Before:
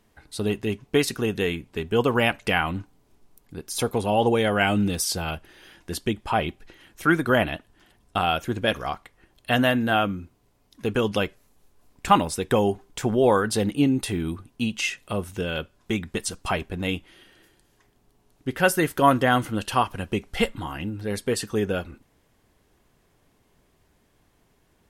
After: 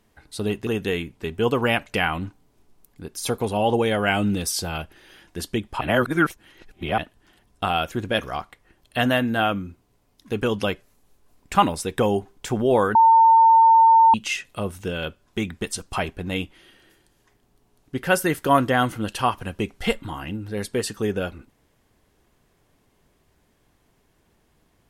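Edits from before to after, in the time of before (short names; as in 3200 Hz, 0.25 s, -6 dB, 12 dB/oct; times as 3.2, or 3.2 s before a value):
0.67–1.2 cut
6.34–7.51 reverse
13.48–14.67 bleep 904 Hz -10 dBFS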